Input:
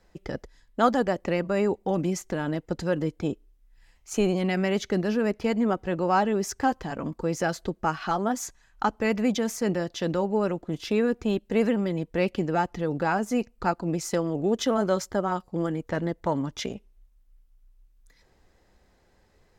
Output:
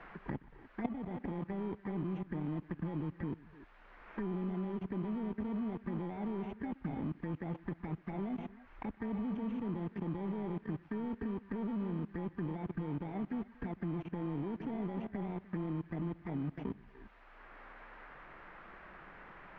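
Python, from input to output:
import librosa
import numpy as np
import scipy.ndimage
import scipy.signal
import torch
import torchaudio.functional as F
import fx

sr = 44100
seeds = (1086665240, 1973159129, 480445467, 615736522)

p1 = fx.bit_reversed(x, sr, seeds[0], block=32)
p2 = fx.notch(p1, sr, hz=1100.0, q=11.0)
p3 = p2 + fx.echo_multitap(p2, sr, ms=(123, 233, 297), db=(-16.5, -19.0, -13.0), dry=0)
p4 = fx.level_steps(p3, sr, step_db=17)
p5 = fx.peak_eq(p4, sr, hz=540.0, db=-12.5, octaves=0.64)
p6 = fx.env_flanger(p5, sr, rest_ms=6.2, full_db=-33.0)
p7 = fx.dmg_noise_colour(p6, sr, seeds[1], colour='blue', level_db=-49.0)
p8 = fx.quant_dither(p7, sr, seeds[2], bits=6, dither='none')
p9 = p7 + F.gain(torch.from_numpy(p8), -7.5).numpy()
p10 = scipy.signal.sosfilt(scipy.signal.butter(4, 1800.0, 'lowpass', fs=sr, output='sos'), p9)
p11 = fx.band_squash(p10, sr, depth_pct=70)
y = F.gain(torch.from_numpy(p11), -2.5).numpy()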